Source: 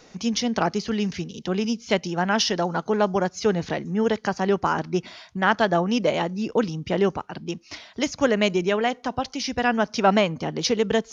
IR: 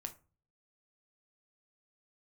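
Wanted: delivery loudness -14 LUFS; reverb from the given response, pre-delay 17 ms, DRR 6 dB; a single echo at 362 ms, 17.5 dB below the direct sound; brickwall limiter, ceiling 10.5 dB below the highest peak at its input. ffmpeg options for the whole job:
-filter_complex "[0:a]alimiter=limit=0.158:level=0:latency=1,aecho=1:1:362:0.133,asplit=2[s0][s1];[1:a]atrim=start_sample=2205,adelay=17[s2];[s1][s2]afir=irnorm=-1:irlink=0,volume=0.708[s3];[s0][s3]amix=inputs=2:normalize=0,volume=3.98"

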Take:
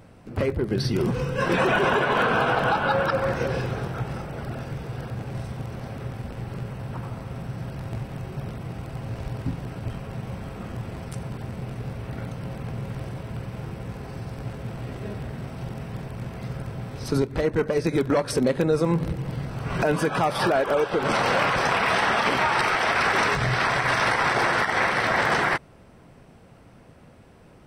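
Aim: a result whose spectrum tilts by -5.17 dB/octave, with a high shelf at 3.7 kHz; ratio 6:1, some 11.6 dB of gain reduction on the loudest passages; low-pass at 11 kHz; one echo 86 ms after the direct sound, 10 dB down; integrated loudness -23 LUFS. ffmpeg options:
-af "lowpass=11000,highshelf=f=3700:g=-3.5,acompressor=threshold=0.0282:ratio=6,aecho=1:1:86:0.316,volume=3.76"

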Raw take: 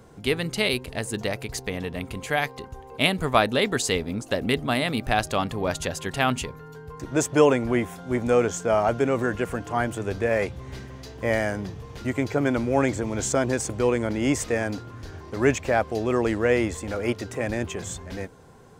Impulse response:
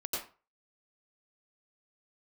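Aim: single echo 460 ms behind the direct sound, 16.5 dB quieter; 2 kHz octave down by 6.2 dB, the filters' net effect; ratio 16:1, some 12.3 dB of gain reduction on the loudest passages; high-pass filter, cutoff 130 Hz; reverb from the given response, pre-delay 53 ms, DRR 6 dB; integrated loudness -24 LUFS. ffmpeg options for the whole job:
-filter_complex "[0:a]highpass=130,equalizer=f=2000:t=o:g=-8,acompressor=threshold=0.0631:ratio=16,aecho=1:1:460:0.15,asplit=2[s0][s1];[1:a]atrim=start_sample=2205,adelay=53[s2];[s1][s2]afir=irnorm=-1:irlink=0,volume=0.335[s3];[s0][s3]amix=inputs=2:normalize=0,volume=2"

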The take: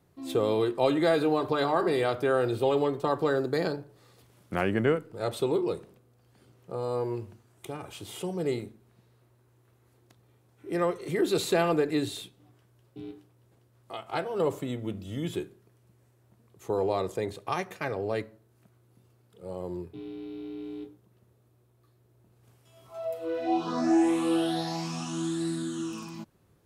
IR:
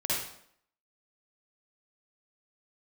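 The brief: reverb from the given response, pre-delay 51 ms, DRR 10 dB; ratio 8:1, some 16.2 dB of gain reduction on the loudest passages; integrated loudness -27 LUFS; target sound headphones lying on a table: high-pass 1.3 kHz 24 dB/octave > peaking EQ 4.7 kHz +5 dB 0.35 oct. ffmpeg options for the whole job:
-filter_complex "[0:a]acompressor=threshold=0.0141:ratio=8,asplit=2[s0][s1];[1:a]atrim=start_sample=2205,adelay=51[s2];[s1][s2]afir=irnorm=-1:irlink=0,volume=0.126[s3];[s0][s3]amix=inputs=2:normalize=0,highpass=f=1300:w=0.5412,highpass=f=1300:w=1.3066,equalizer=f=4700:t=o:w=0.35:g=5,volume=13.3"

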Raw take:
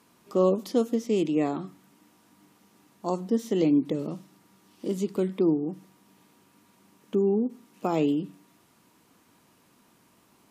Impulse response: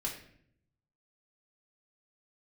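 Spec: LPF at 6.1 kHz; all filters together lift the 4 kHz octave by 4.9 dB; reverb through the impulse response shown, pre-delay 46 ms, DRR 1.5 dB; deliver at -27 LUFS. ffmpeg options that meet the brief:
-filter_complex "[0:a]lowpass=6100,equalizer=f=4000:t=o:g=7.5,asplit=2[s0][s1];[1:a]atrim=start_sample=2205,adelay=46[s2];[s1][s2]afir=irnorm=-1:irlink=0,volume=0.668[s3];[s0][s3]amix=inputs=2:normalize=0,volume=0.75"

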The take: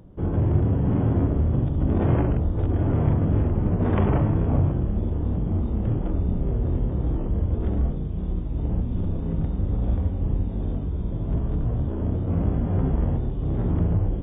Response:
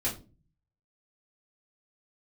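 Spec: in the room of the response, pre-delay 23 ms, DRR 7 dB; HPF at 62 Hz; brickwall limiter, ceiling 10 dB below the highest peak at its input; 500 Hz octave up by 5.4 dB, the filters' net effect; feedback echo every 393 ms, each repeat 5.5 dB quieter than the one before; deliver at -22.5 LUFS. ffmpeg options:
-filter_complex "[0:a]highpass=62,equalizer=f=500:t=o:g=7,alimiter=limit=0.141:level=0:latency=1,aecho=1:1:393|786|1179|1572|1965|2358|2751:0.531|0.281|0.149|0.079|0.0419|0.0222|0.0118,asplit=2[s0][s1];[1:a]atrim=start_sample=2205,adelay=23[s2];[s1][s2]afir=irnorm=-1:irlink=0,volume=0.224[s3];[s0][s3]amix=inputs=2:normalize=0,volume=1.12"

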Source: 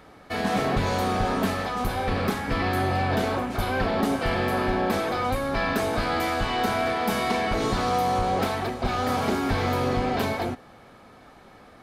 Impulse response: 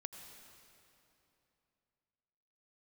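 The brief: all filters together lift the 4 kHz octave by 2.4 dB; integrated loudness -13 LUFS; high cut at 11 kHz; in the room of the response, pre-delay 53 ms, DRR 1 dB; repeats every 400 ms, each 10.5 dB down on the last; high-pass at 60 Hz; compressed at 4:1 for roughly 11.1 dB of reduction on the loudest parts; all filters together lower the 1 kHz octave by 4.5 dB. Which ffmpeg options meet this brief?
-filter_complex "[0:a]highpass=60,lowpass=11000,equalizer=f=1000:t=o:g=-7,equalizer=f=4000:t=o:g=3.5,acompressor=threshold=0.0178:ratio=4,aecho=1:1:400|800|1200:0.299|0.0896|0.0269,asplit=2[s0][s1];[1:a]atrim=start_sample=2205,adelay=53[s2];[s1][s2]afir=irnorm=-1:irlink=0,volume=1.33[s3];[s0][s3]amix=inputs=2:normalize=0,volume=10.6"

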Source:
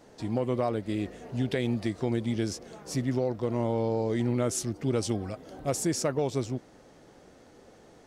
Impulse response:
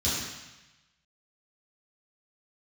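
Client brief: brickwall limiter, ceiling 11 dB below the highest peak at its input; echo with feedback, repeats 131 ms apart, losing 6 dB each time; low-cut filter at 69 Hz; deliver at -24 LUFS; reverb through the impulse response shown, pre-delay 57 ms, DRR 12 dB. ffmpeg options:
-filter_complex "[0:a]highpass=69,alimiter=level_in=1.06:limit=0.0631:level=0:latency=1,volume=0.944,aecho=1:1:131|262|393|524|655|786:0.501|0.251|0.125|0.0626|0.0313|0.0157,asplit=2[s0][s1];[1:a]atrim=start_sample=2205,adelay=57[s2];[s1][s2]afir=irnorm=-1:irlink=0,volume=0.0794[s3];[s0][s3]amix=inputs=2:normalize=0,volume=2.82"

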